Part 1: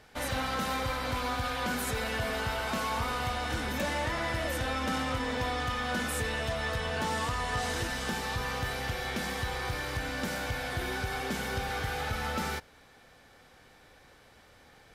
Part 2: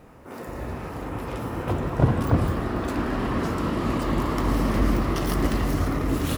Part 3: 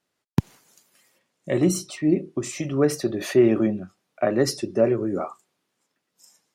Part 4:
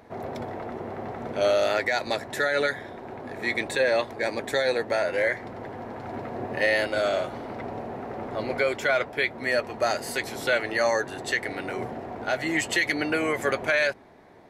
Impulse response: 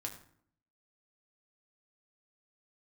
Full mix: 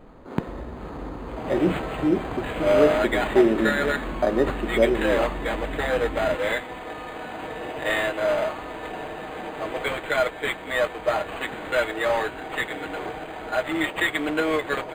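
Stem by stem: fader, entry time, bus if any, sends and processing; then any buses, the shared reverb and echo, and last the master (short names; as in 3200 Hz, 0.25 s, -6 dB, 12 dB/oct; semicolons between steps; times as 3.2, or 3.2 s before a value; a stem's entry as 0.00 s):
-5.5 dB, 1.30 s, no send, bell 2900 Hz +5.5 dB
+0.5 dB, 0.00 s, no send, low shelf 240 Hz +9.5 dB; compressor, threshold -26 dBFS, peak gain reduction 19 dB
+1.0 dB, 0.00 s, no send, dry
-1.0 dB, 1.25 s, no send, modulation noise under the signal 11 dB; comb 6.4 ms, depth 94%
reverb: off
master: bell 100 Hz -14.5 dB 1.4 oct; decimation joined by straight lines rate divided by 8×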